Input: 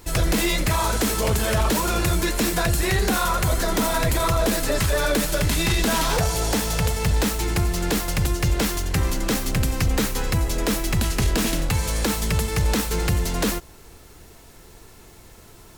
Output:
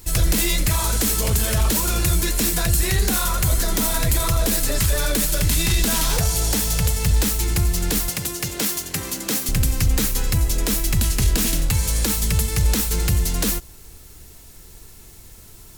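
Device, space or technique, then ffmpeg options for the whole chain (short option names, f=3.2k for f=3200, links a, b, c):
smiley-face EQ: -filter_complex "[0:a]lowshelf=f=100:g=5,equalizer=f=750:t=o:w=2.9:g=-5.5,highshelf=f=6k:g=8.5,asettb=1/sr,asplit=3[a][b][c];[a]atrim=end=8.094[d];[b]atrim=start=8.09:end=9.49,asetpts=PTS-STARTPTS,afade=t=in:d=0.004:c=qsin,afade=t=out:st=1.396:d=0.004:c=qsin,highpass=200[e];[c]atrim=start=9.486[f];[d][e]acrossfade=d=0.004:c1=hsin:c2=qsin[g];[g][f]acrossfade=d=0.004:c1=qsin:c2=hsin"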